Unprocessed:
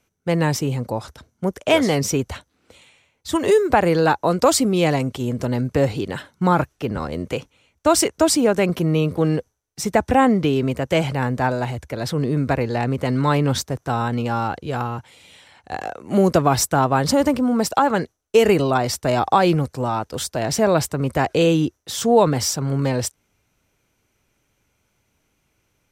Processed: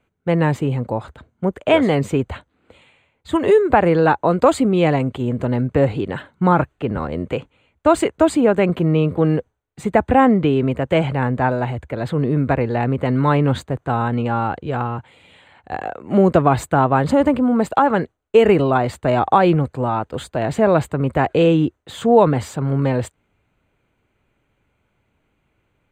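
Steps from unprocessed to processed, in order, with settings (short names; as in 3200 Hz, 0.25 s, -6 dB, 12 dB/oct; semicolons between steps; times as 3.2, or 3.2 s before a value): running mean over 8 samples; gain +2.5 dB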